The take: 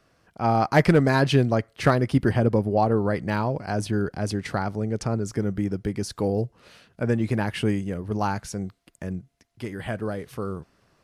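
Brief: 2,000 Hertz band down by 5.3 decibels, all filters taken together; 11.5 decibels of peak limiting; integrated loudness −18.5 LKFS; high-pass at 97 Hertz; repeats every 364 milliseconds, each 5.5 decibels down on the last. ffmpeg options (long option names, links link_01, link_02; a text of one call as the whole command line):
ffmpeg -i in.wav -af "highpass=97,equalizer=frequency=2000:width_type=o:gain=-7,alimiter=limit=-18dB:level=0:latency=1,aecho=1:1:364|728|1092|1456|1820|2184|2548:0.531|0.281|0.149|0.079|0.0419|0.0222|0.0118,volume=10.5dB" out.wav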